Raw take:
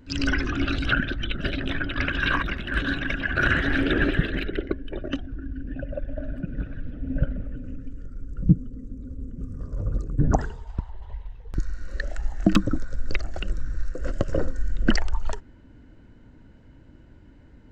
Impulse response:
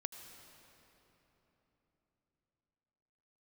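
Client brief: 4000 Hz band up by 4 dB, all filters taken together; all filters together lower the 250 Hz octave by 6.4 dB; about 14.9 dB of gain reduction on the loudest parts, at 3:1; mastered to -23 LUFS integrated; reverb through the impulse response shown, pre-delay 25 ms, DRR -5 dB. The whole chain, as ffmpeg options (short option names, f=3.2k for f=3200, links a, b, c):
-filter_complex "[0:a]equalizer=f=250:t=o:g=-9,equalizer=f=4k:t=o:g=5.5,acompressor=threshold=-37dB:ratio=3,asplit=2[a][b];[1:a]atrim=start_sample=2205,adelay=25[c];[b][c]afir=irnorm=-1:irlink=0,volume=7dB[d];[a][d]amix=inputs=2:normalize=0,volume=11dB"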